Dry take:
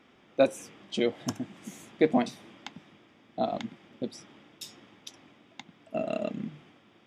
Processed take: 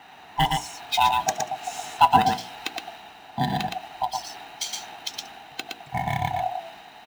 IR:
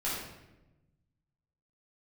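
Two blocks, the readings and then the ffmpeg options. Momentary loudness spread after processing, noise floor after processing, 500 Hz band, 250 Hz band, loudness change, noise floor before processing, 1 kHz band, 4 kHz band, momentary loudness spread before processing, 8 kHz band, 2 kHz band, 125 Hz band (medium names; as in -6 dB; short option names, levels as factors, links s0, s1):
17 LU, -47 dBFS, -5.5 dB, -2.5 dB, +5.5 dB, -61 dBFS, +17.0 dB, +13.0 dB, 22 LU, +12.5 dB, +10.0 dB, +11.0 dB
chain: -filter_complex "[0:a]afftfilt=real='real(if(lt(b,1008),b+24*(1-2*mod(floor(b/24),2)),b),0)':imag='imag(if(lt(b,1008),b+24*(1-2*mod(floor(b/24),2)),b),0)':win_size=2048:overlap=0.75,lowpass=7000,bandreject=f=60:t=h:w=6,bandreject=f=120:t=h:w=6,bandreject=f=180:t=h:w=6,bandreject=f=240:t=h:w=6,bandreject=f=300:t=h:w=6,bandreject=f=360:t=h:w=6,bandreject=f=420:t=h:w=6,bandreject=f=480:t=h:w=6,bandreject=f=540:t=h:w=6,bandreject=f=600:t=h:w=6,aecho=1:1:116:0.596,asplit=2[s0][s1];[s1]acompressor=threshold=0.00794:ratio=12,volume=1.26[s2];[s0][s2]amix=inputs=2:normalize=0,highpass=f=200:p=1,acrossover=split=1800[s3][s4];[s4]acrusher=bits=2:mode=log:mix=0:aa=0.000001[s5];[s3][s5]amix=inputs=2:normalize=0,adynamicequalizer=threshold=0.00708:dfrequency=2200:dqfactor=0.7:tfrequency=2200:tqfactor=0.7:attack=5:release=100:ratio=0.375:range=2:mode=boostabove:tftype=highshelf,volume=1.88"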